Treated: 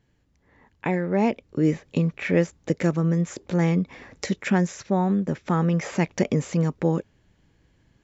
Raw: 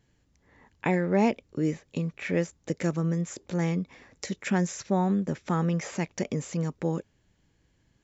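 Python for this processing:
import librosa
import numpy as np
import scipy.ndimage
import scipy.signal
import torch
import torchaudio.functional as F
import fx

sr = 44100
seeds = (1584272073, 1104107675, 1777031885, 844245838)

y = fx.rider(x, sr, range_db=5, speed_s=0.5)
y = fx.high_shelf(y, sr, hz=6500.0, db=-11.5)
y = y * 10.0 ** (5.0 / 20.0)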